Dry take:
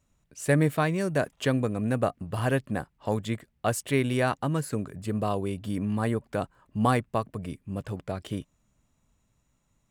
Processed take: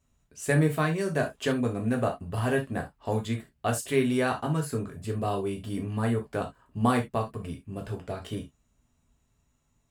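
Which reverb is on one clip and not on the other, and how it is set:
reverb whose tail is shaped and stops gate 100 ms falling, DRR 1.5 dB
level −3 dB

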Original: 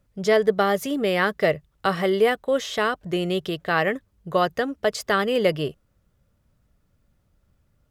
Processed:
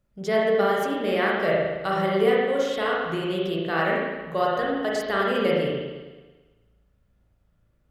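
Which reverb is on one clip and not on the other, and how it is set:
spring reverb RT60 1.3 s, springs 36/54 ms, chirp 35 ms, DRR −4.5 dB
level −7 dB

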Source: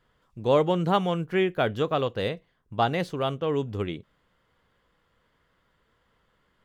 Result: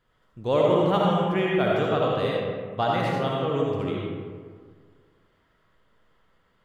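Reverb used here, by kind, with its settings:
comb and all-pass reverb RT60 1.8 s, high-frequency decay 0.45×, pre-delay 30 ms, DRR −3.5 dB
level −3 dB

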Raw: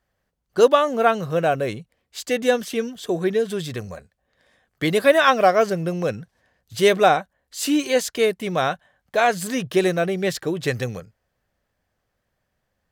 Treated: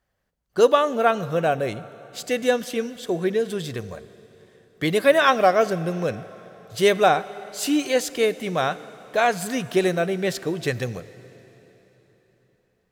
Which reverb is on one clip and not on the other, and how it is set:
dense smooth reverb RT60 4 s, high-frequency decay 0.9×, DRR 16 dB
level −1.5 dB

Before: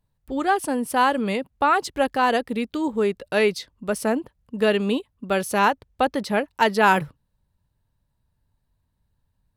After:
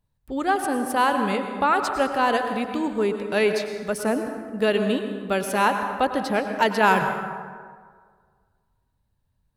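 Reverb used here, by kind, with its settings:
dense smooth reverb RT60 1.8 s, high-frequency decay 0.5×, pre-delay 85 ms, DRR 6 dB
level −1.5 dB

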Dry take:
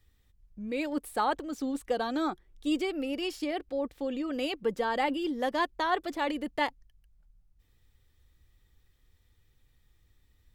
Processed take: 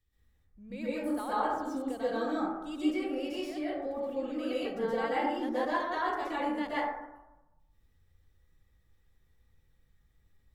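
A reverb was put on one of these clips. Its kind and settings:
dense smooth reverb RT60 1 s, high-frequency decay 0.3×, pre-delay 110 ms, DRR −10 dB
level −12.5 dB

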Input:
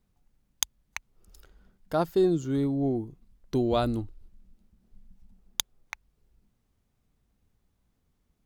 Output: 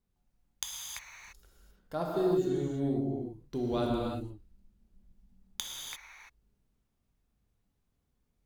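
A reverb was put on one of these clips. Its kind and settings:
reverb whose tail is shaped and stops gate 370 ms flat, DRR −3 dB
level −9.5 dB

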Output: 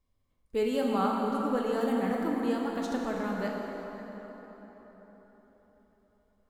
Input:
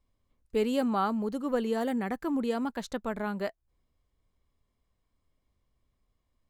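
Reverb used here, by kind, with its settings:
dense smooth reverb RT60 4.5 s, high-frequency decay 0.6×, DRR −1.5 dB
level −3 dB

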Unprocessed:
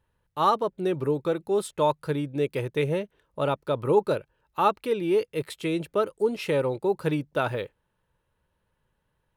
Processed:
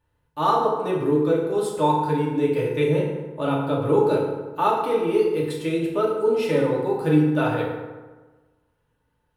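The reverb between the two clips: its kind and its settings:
feedback delay network reverb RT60 1.3 s, low-frequency decay 1.05×, high-frequency decay 0.55×, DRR −4.5 dB
level −3 dB

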